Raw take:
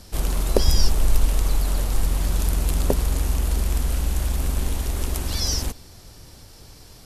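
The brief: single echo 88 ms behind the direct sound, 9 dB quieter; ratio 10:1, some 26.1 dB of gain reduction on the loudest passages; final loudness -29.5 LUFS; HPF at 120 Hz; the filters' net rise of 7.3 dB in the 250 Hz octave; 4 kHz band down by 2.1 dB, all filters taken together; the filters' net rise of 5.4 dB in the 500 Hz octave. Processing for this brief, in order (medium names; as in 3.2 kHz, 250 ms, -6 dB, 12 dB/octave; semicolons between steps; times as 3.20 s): high-pass 120 Hz; peaking EQ 250 Hz +8.5 dB; peaking EQ 500 Hz +4 dB; peaking EQ 4 kHz -3 dB; compression 10:1, threshold -40 dBFS; delay 88 ms -9 dB; trim +13.5 dB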